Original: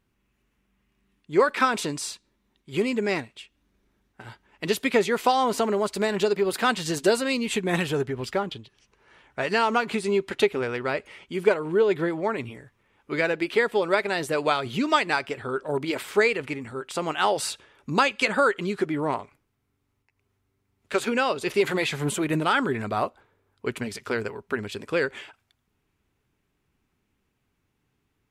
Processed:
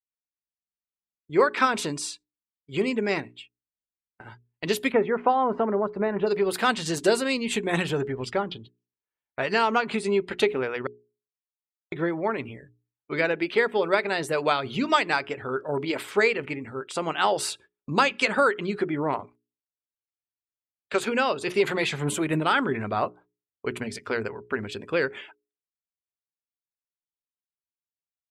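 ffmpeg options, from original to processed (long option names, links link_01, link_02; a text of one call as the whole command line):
ffmpeg -i in.wav -filter_complex "[0:a]asplit=3[link_01][link_02][link_03];[link_01]afade=type=out:start_time=4.91:duration=0.02[link_04];[link_02]lowpass=1500,afade=type=in:start_time=4.91:duration=0.02,afade=type=out:start_time=6.26:duration=0.02[link_05];[link_03]afade=type=in:start_time=6.26:duration=0.02[link_06];[link_04][link_05][link_06]amix=inputs=3:normalize=0,asplit=3[link_07][link_08][link_09];[link_07]atrim=end=10.87,asetpts=PTS-STARTPTS,afade=type=out:start_time=10.866:duration=0.004:curve=hsin[link_10];[link_08]atrim=start=10.87:end=11.92,asetpts=PTS-STARTPTS,volume=0[link_11];[link_09]atrim=start=11.92,asetpts=PTS-STARTPTS,afade=type=in:duration=0.004:curve=hsin[link_12];[link_10][link_11][link_12]concat=n=3:v=0:a=1,agate=range=-23dB:threshold=-47dB:ratio=16:detection=peak,afftdn=noise_reduction=18:noise_floor=-48,bandreject=frequency=60:width_type=h:width=6,bandreject=frequency=120:width_type=h:width=6,bandreject=frequency=180:width_type=h:width=6,bandreject=frequency=240:width_type=h:width=6,bandreject=frequency=300:width_type=h:width=6,bandreject=frequency=360:width_type=h:width=6,bandreject=frequency=420:width_type=h:width=6" out.wav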